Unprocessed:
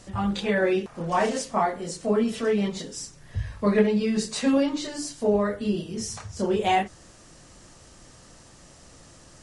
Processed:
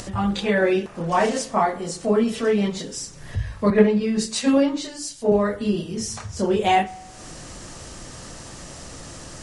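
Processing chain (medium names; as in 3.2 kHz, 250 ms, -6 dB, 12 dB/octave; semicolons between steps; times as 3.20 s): upward compressor, threshold -32 dBFS; spring tank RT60 1.1 s, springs 36 ms, DRR 19.5 dB; 3.70–5.32 s: three bands expanded up and down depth 70%; trim +3.5 dB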